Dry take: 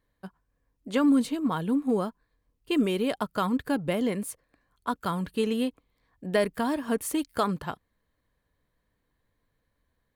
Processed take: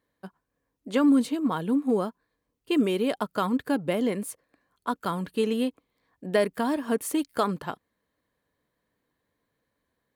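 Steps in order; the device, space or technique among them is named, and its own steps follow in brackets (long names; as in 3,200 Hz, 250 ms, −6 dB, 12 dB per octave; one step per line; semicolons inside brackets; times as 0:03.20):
filter by subtraction (in parallel: low-pass filter 300 Hz 12 dB per octave + polarity inversion)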